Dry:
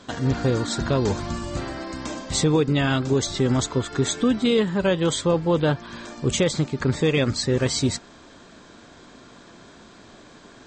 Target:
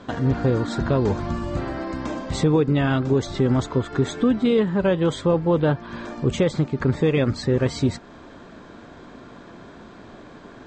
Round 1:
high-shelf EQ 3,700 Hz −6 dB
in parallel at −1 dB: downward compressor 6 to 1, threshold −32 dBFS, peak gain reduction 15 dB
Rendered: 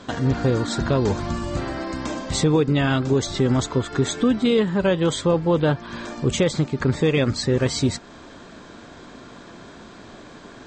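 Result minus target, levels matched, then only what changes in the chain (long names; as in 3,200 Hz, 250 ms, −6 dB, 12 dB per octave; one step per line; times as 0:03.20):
8,000 Hz band +8.5 dB
change: high-shelf EQ 3,700 Hz −18 dB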